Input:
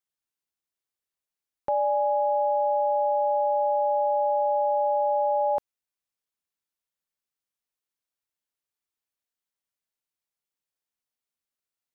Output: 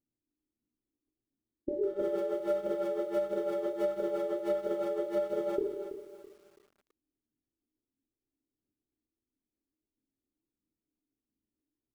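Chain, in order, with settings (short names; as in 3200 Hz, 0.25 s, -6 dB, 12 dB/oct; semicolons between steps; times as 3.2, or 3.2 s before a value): bell 180 Hz -8 dB 0.27 oct; limiter -24.5 dBFS, peak gain reduction 7 dB; synth low-pass 390 Hz, resonance Q 4.6; speakerphone echo 0.15 s, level -11 dB; phaser 1.5 Hz, delay 3 ms, feedback 48%; reverb RT60 0.75 s, pre-delay 19 ms, DRR -0.5 dB; formant shift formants -6 st; lo-fi delay 0.33 s, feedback 35%, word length 10-bit, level -11 dB; gain +3.5 dB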